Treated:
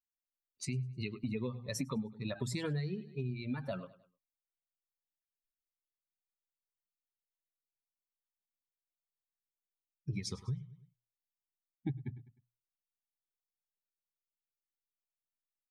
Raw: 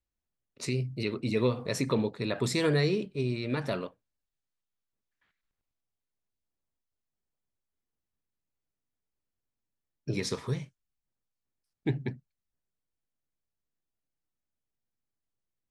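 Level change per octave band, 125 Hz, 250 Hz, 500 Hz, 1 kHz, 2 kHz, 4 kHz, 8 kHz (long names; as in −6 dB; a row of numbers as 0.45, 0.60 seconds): −6.0, −7.5, −13.0, −11.0, −11.0, −9.5, −5.5 decibels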